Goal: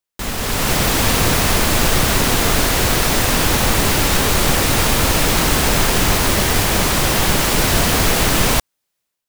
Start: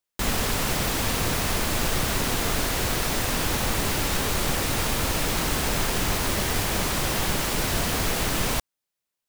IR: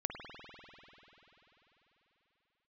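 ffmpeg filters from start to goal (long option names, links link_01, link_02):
-af "dynaudnorm=framelen=360:gausssize=3:maxgain=11.5dB"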